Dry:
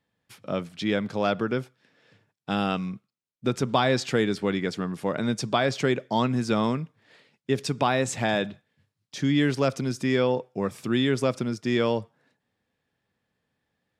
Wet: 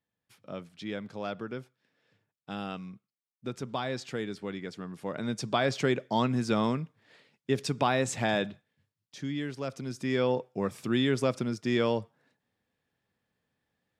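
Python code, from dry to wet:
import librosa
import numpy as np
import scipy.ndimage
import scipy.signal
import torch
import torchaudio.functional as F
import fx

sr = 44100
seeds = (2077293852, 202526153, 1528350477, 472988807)

y = fx.gain(x, sr, db=fx.line((4.76, -11.0), (5.66, -3.0), (8.42, -3.0), (9.53, -13.0), (10.31, -3.0)))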